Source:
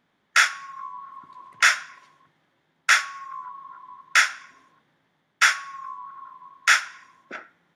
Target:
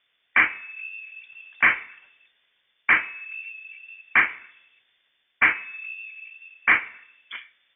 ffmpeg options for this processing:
-filter_complex "[0:a]asettb=1/sr,asplit=3[a][b][c];[a]atrim=end=5.614[d];[b]atrim=start=5.61:end=6.14,asetpts=PTS-STARTPTS,afade=t=in:d=0.004:c=qsin,afade=t=out:st=0.526:d=0.004:c=qsin,lowshelf=f=180:g=10[e];[c]atrim=start=6.136[f];[d][e]acrossfade=d=0.004:c1=hsin:c2=qsin[g];[g][f]acrossfade=d=0.004:c1=qsin:c2=hsin,lowpass=f=3.1k:t=q:w=0.5098,lowpass=f=3.1k:t=q:w=0.6013,lowpass=f=3.1k:t=q:w=0.9,lowpass=f=3.1k:t=q:w=2.563,afreqshift=-3700"

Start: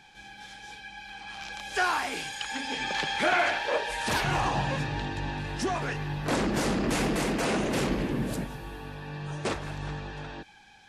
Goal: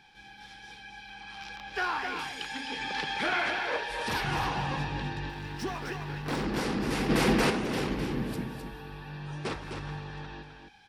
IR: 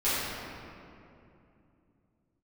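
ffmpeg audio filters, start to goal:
-filter_complex "[0:a]aecho=1:1:258:0.473,asettb=1/sr,asplit=3[a][b][c];[a]atrim=end=1.564[d];[b]atrim=start=1.56:end=2.19,asetpts=PTS-STARTPTS,afade=t=in:d=0.004:c=qsin,afade=t=out:st=0.626:d=0.004:c=qsin,adynamicsmooth=sensitivity=3:basefreq=3.8k[e];[c]atrim=start=2.186[f];[d][e]acrossfade=d=0.004:c1=hsin:c2=qsin[g];[g][f]acrossfade=d=0.004:c1=qsin:c2=hsin,asettb=1/sr,asplit=3[h][i][j];[h]atrim=end=5.294[k];[i]atrim=start=5.29:end=6.45,asetpts=PTS-STARTPTS,afade=t=in:d=0.004:c=qsin,afade=t=out:st=1.156:d=0.004:c=qsin,aeval=exprs='sgn(val(0))*max(abs(val(0))-0.0075,0)':c=same[l];[j]atrim=start=6.446[m];[k][l]acrossfade=d=0.004:c1=hsin:c2=qsin[n];[n][m]acrossfade=d=0.004:c1=qsin:c2=hsin,asplit=3[o][p][q];[o]afade=t=out:st=7.09:d=0.02[r];[p]acontrast=73,afade=t=in:st=7.09:d=0.02,afade=t=out:st=7.49:d=0.02[s];[q]afade=t=in:st=7.49:d=0.02[t];[r][s][t]amix=inputs=3:normalize=0,superequalizer=8b=0.562:15b=0.447:16b=0.631,volume=-3.5dB"

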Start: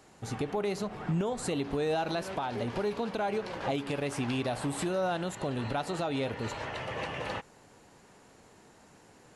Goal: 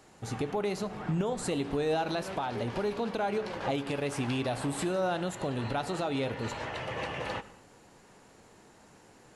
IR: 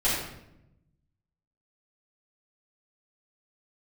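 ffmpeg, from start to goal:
-filter_complex "[0:a]asplit=2[a][b];[1:a]atrim=start_sample=2205,atrim=end_sample=6615,asetrate=27342,aresample=44100[c];[b][c]afir=irnorm=-1:irlink=0,volume=-29.5dB[d];[a][d]amix=inputs=2:normalize=0"

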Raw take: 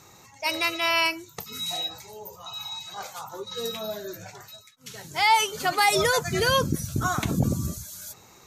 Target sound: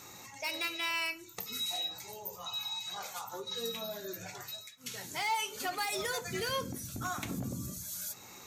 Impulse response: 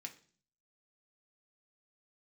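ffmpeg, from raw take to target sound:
-filter_complex "[0:a]acompressor=threshold=-43dB:ratio=2,asoftclip=type=hard:threshold=-29.5dB,asplit=2[a][b];[1:a]atrim=start_sample=2205,highshelf=f=12k:g=9.5[c];[b][c]afir=irnorm=-1:irlink=0,volume=7.5dB[d];[a][d]amix=inputs=2:normalize=0,volume=-5.5dB"

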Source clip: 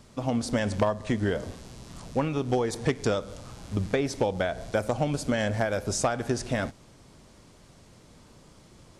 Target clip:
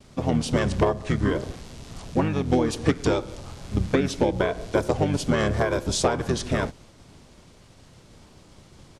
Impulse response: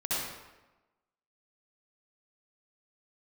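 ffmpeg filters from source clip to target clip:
-filter_complex "[0:a]asplit=2[a][b];[b]asetrate=29433,aresample=44100,atempo=1.49831,volume=-1dB[c];[a][c]amix=inputs=2:normalize=0,agate=range=-33dB:threshold=-49dB:ratio=3:detection=peak,volume=1.5dB"

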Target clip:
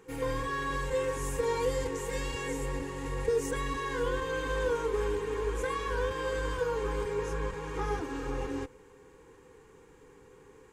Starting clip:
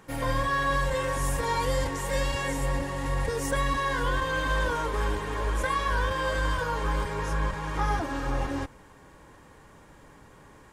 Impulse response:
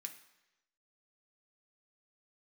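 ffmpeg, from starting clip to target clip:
-af "superequalizer=6b=1.58:7b=3.98:8b=0.355:12b=1.41:15b=1.58,volume=-7.5dB"

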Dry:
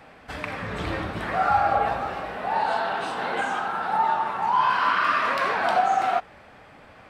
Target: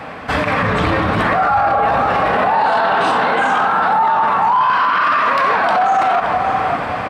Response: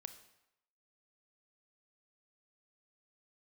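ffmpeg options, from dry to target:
-filter_complex "[0:a]highpass=69,equalizer=f=1.1k:w=5.2:g=4.5,asplit=2[a][b];[b]adelay=572,lowpass=f=2k:p=1,volume=-21dB,asplit=2[c][d];[d]adelay=572,lowpass=f=2k:p=1,volume=0.44,asplit=2[e][f];[f]adelay=572,lowpass=f=2k:p=1,volume=0.44[g];[c][e][g]amix=inputs=3:normalize=0[h];[a][h]amix=inputs=2:normalize=0,dynaudnorm=f=340:g=9:m=11.5dB,highshelf=f=4.8k:g=-8.5,bandreject=f=370:w=12,alimiter=level_in=25dB:limit=-1dB:release=50:level=0:latency=1,volume=-6.5dB"

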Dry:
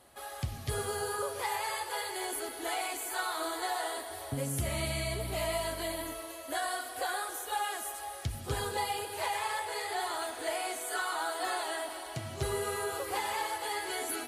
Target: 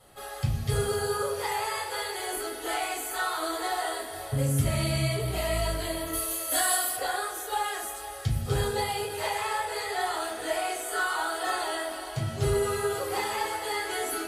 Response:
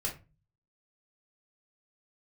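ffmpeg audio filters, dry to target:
-filter_complex "[0:a]asettb=1/sr,asplit=3[a][b][c];[a]atrim=end=6.134[d];[b]atrim=start=6.13:end=6.96,asetpts=PTS-STARTPTS,afade=t=in:d=0.004:c=qsin,afade=t=out:st=0.826:d=0.004:c=qsin,aemphasis=mode=production:type=75kf[e];[c]atrim=start=6.956[f];[d][e]acrossfade=d=0.004:c1=hsin:c2=qsin[g];[g][f]acrossfade=d=0.004:c1=qsin:c2=hsin[h];[1:a]atrim=start_sample=2205[i];[h][i]afir=irnorm=-1:irlink=0,volume=1.5dB"

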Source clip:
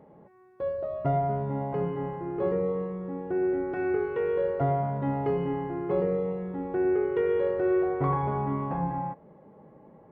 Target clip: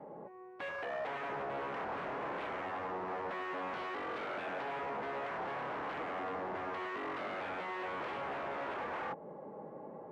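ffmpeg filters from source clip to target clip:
-filter_complex "[0:a]adynamicequalizer=threshold=0.01:dfrequency=460:dqfactor=7.8:tfrequency=460:tqfactor=7.8:attack=5:release=100:ratio=0.375:range=3:mode=cutabove:tftype=bell,acrossover=split=480[a][b];[a]alimiter=level_in=6.5dB:limit=-24dB:level=0:latency=1:release=21,volume=-6.5dB[c];[b]acompressor=threshold=-40dB:ratio=6[d];[c][d]amix=inputs=2:normalize=0,aeval=exprs='0.0106*(abs(mod(val(0)/0.0106+3,4)-2)-1)':c=same,bandpass=f=680:t=q:w=0.69:csg=0,asplit=2[e][f];[f]asetrate=58866,aresample=44100,atempo=0.749154,volume=-16dB[g];[e][g]amix=inputs=2:normalize=0,volume=7.5dB"

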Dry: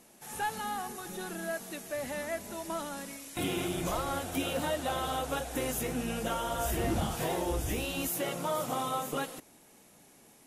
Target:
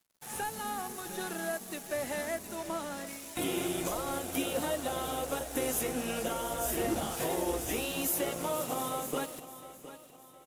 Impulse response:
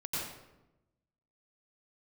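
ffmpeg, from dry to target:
-filter_complex "[0:a]asettb=1/sr,asplit=3[a][b][c];[a]atrim=end=2.554[d];[b]atrim=start=2.55:end=3.07,asetpts=PTS-STARTPTS,afade=t=in:d=0.004:c=qsin,afade=t=out:st=0.516:d=0.004:c=qsin,highshelf=f=8.2k:g=-7.5[e];[c]atrim=start=3.066[f];[d][e]acrossfade=d=0.004:c1=hsin:c2=qsin[g];[g][f]acrossfade=d=0.004:c1=qsin:c2=hsin,acrossover=split=520|5900[h][i][j];[i]alimiter=level_in=9dB:limit=-24dB:level=0:latency=1:release=450,volume=-9dB[k];[h][k][j]amix=inputs=3:normalize=0,acrossover=split=270[l][m];[l]acompressor=threshold=-52dB:ratio=2.5[n];[n][m]amix=inputs=2:normalize=0,aeval=exprs='sgn(val(0))*max(abs(val(0))-0.00251,0)':c=same,aecho=1:1:712|1424|2136|2848:0.188|0.0791|0.0332|0.014,volume=4.5dB"

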